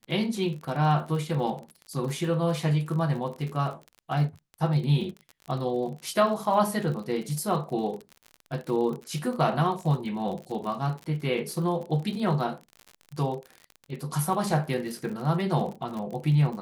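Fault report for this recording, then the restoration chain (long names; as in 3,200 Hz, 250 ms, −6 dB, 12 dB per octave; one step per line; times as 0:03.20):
surface crackle 44 per second −34 dBFS
0:10.63–0:10.64: drop-out 5.6 ms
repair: click removal
repair the gap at 0:10.63, 5.6 ms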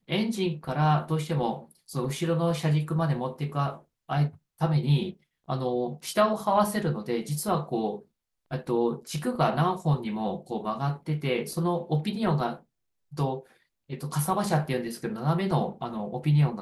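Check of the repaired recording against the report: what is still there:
none of them is left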